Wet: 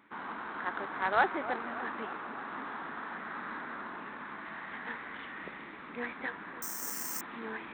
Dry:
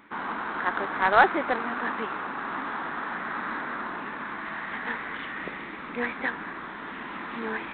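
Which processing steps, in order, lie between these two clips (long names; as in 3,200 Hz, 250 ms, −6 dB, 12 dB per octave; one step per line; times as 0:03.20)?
high-pass filter 45 Hz
delay with a low-pass on its return 295 ms, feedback 63%, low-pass 1,300 Hz, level −12.5 dB
0:06.62–0:07.21: bad sample-rate conversion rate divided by 6×, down filtered, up zero stuff
level −8.5 dB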